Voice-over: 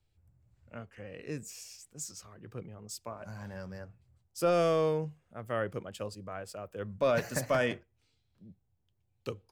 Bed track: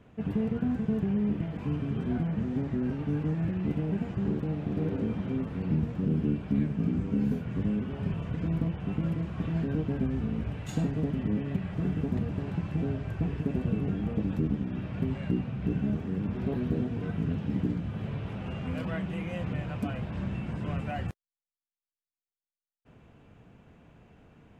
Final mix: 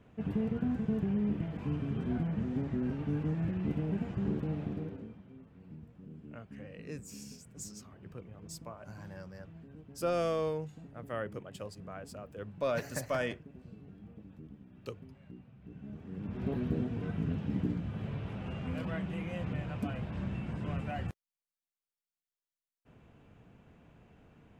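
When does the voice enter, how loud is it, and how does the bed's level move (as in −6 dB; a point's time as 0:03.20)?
5.60 s, −4.5 dB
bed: 0:04.63 −3.5 dB
0:05.25 −22 dB
0:15.64 −22 dB
0:16.47 −3.5 dB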